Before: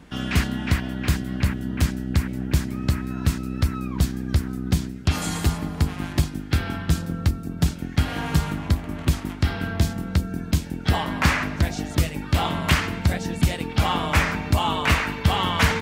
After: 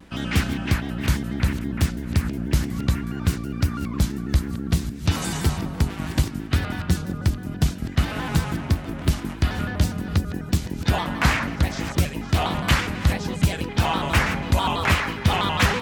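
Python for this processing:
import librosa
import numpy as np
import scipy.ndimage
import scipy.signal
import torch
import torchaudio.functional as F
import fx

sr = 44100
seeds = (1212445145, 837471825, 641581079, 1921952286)

y = fx.reverse_delay(x, sr, ms=445, wet_db=-13.5)
y = fx.vibrato_shape(y, sr, shape='square', rate_hz=6.1, depth_cents=160.0)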